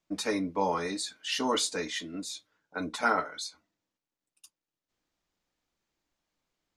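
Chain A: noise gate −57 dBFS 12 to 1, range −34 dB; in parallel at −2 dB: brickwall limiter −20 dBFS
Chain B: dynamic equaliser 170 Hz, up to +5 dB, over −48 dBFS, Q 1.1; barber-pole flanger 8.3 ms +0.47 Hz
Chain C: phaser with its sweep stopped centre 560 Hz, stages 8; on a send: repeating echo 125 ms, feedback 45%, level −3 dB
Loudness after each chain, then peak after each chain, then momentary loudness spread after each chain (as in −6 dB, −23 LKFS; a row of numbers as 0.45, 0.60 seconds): −27.0, −33.0, −32.0 LKFS; −10.0, −14.0, −14.0 dBFS; 11, 13, 13 LU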